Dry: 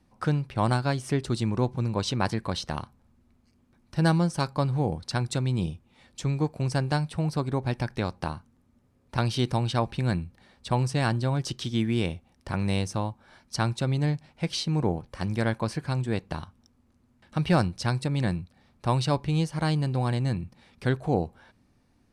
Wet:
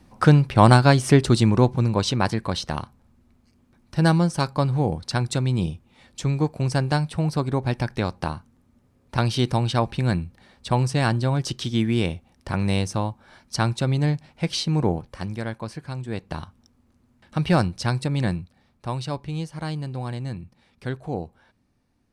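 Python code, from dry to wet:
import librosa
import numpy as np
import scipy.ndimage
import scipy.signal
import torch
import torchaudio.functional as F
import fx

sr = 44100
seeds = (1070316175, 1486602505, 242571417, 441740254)

y = fx.gain(x, sr, db=fx.line((1.17, 11.0), (2.28, 4.0), (14.99, 4.0), (15.43, -4.0), (16.01, -4.0), (16.41, 3.0), (18.29, 3.0), (18.91, -4.0)))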